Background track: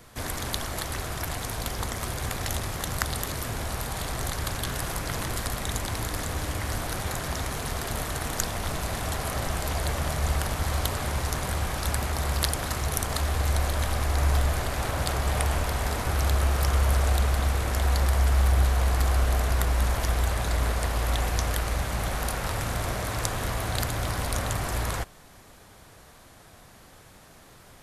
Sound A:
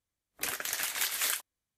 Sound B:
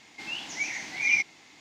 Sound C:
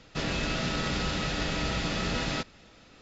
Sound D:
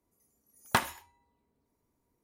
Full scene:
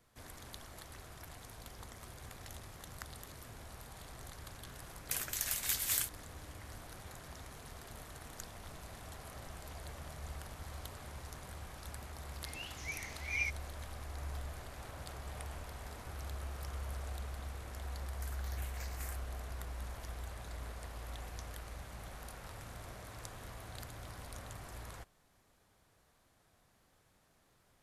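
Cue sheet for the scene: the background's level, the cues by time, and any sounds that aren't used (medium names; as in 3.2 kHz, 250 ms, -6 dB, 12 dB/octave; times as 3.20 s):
background track -19.5 dB
4.68 s: add A -10.5 dB + treble shelf 4.5 kHz +10.5 dB
12.28 s: add B -12 dB
17.79 s: add A -16.5 dB + stepped phaser 5.1 Hz 600–3300 Hz
not used: C, D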